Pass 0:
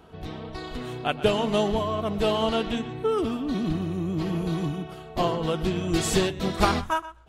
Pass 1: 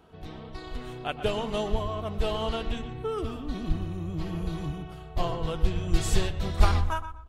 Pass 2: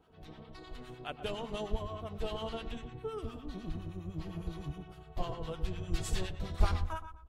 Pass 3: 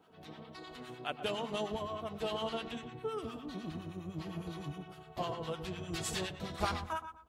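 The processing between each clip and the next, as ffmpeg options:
-filter_complex "[0:a]asubboost=boost=10:cutoff=74,asplit=2[s0][s1];[s1]adelay=121,lowpass=f=1700:p=1,volume=0.282,asplit=2[s2][s3];[s3]adelay=121,lowpass=f=1700:p=1,volume=0.36,asplit=2[s4][s5];[s5]adelay=121,lowpass=f=1700:p=1,volume=0.36,asplit=2[s6][s7];[s7]adelay=121,lowpass=f=1700:p=1,volume=0.36[s8];[s0][s2][s4][s6][s8]amix=inputs=5:normalize=0,volume=0.531"
-filter_complex "[0:a]acrossover=split=930[s0][s1];[s0]aeval=exprs='val(0)*(1-0.7/2+0.7/2*cos(2*PI*9.8*n/s))':c=same[s2];[s1]aeval=exprs='val(0)*(1-0.7/2-0.7/2*cos(2*PI*9.8*n/s))':c=same[s3];[s2][s3]amix=inputs=2:normalize=0,volume=0.531"
-af "highpass=170,equalizer=f=390:w=1.5:g=-2.5,volume=1.5"

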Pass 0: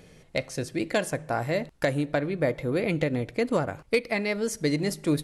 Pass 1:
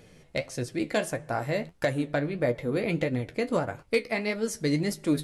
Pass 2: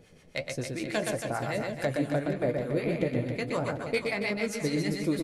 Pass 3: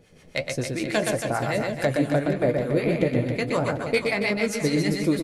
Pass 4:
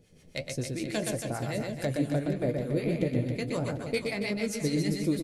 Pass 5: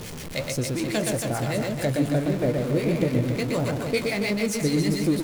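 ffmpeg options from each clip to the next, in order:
-af "flanger=delay=8.3:depth=6.1:regen=50:speed=1.6:shape=sinusoidal,volume=1.33"
-filter_complex "[0:a]acrossover=split=750[s0][s1];[s0]aeval=exprs='val(0)*(1-0.7/2+0.7/2*cos(2*PI*6.9*n/s))':c=same[s2];[s1]aeval=exprs='val(0)*(1-0.7/2-0.7/2*cos(2*PI*6.9*n/s))':c=same[s3];[s2][s3]amix=inputs=2:normalize=0,asplit=2[s4][s5];[s5]aecho=0:1:120|276|478.8|742.4|1085:0.631|0.398|0.251|0.158|0.1[s6];[s4][s6]amix=inputs=2:normalize=0"
-af "dynaudnorm=f=110:g=3:m=2"
-af "equalizer=f=1200:w=0.51:g=-9.5,volume=0.708"
-af "aeval=exprs='val(0)+0.5*0.0178*sgn(val(0))':c=same,volume=1.58"

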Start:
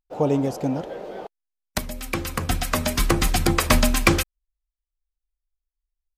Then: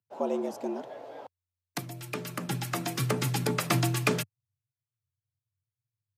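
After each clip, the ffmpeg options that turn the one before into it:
-af "afreqshift=89,volume=0.355"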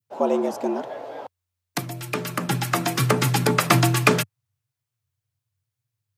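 -af "adynamicequalizer=threshold=0.00891:dfrequency=1200:dqfactor=0.82:tfrequency=1200:tqfactor=0.82:attack=5:release=100:ratio=0.375:range=2:mode=boostabove:tftype=bell,volume=2.37"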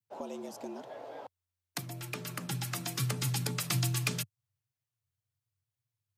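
-filter_complex "[0:a]acrossover=split=150|3000[s0][s1][s2];[s1]acompressor=threshold=0.0224:ratio=5[s3];[s0][s3][s2]amix=inputs=3:normalize=0,volume=0.422"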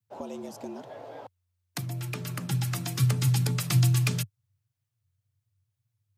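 -af "equalizer=f=89:t=o:w=1.5:g=12.5,volume=1.19"

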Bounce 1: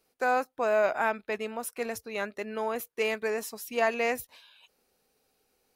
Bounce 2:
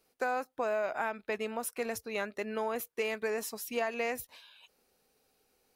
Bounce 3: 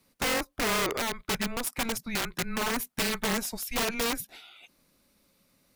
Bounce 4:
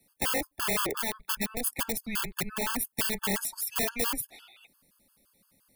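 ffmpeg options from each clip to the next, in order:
-af "acompressor=threshold=0.0355:ratio=6"
-af "afreqshift=-230,aeval=exprs='(mod(25.1*val(0)+1,2)-1)/25.1':c=same,volume=1.88"
-filter_complex "[0:a]acrossover=split=150|610|3500[s0][s1][s2][s3];[s3]aexciter=amount=3.3:drive=1.4:freq=8800[s4];[s0][s1][s2][s4]amix=inputs=4:normalize=0,afftfilt=real='re*gt(sin(2*PI*5.8*pts/sr)*(1-2*mod(floor(b*sr/1024/870),2)),0)':imag='im*gt(sin(2*PI*5.8*pts/sr)*(1-2*mod(floor(b*sr/1024/870),2)),0)':win_size=1024:overlap=0.75"

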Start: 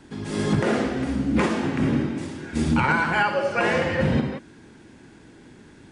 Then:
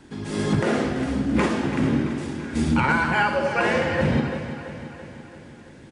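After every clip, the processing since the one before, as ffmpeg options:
-af "aecho=1:1:335|670|1005|1340|1675|2010|2345:0.266|0.154|0.0895|0.0519|0.0301|0.0175|0.0101"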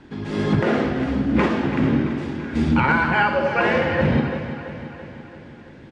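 -af "lowpass=3700,volume=1.33"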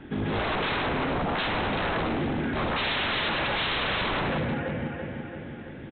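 -af "bandreject=f=1000:w=8,aresample=8000,aeval=exprs='0.0562*(abs(mod(val(0)/0.0562+3,4)-2)-1)':c=same,aresample=44100,volume=1.33"

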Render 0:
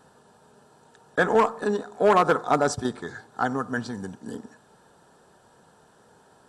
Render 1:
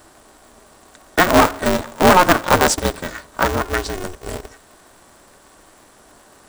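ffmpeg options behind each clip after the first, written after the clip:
-af "aemphasis=mode=production:type=cd,aeval=exprs='val(0)*sgn(sin(2*PI*180*n/s))':c=same,volume=2.37"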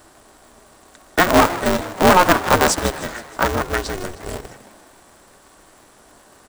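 -filter_complex "[0:a]asplit=7[s0][s1][s2][s3][s4][s5][s6];[s1]adelay=156,afreqshift=80,volume=0.178[s7];[s2]adelay=312,afreqshift=160,volume=0.101[s8];[s3]adelay=468,afreqshift=240,volume=0.0575[s9];[s4]adelay=624,afreqshift=320,volume=0.0331[s10];[s5]adelay=780,afreqshift=400,volume=0.0188[s11];[s6]adelay=936,afreqshift=480,volume=0.0107[s12];[s0][s7][s8][s9][s10][s11][s12]amix=inputs=7:normalize=0,volume=0.891"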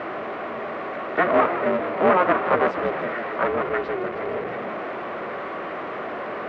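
-af "aeval=exprs='val(0)+0.5*0.168*sgn(val(0))':c=same,highpass=260,equalizer=f=280:t=q:w=4:g=-7,equalizer=f=880:t=q:w=4:g=-8,equalizer=f=1600:t=q:w=4:g=-6,lowpass=f=2000:w=0.5412,lowpass=f=2000:w=1.3066,volume=0.668"

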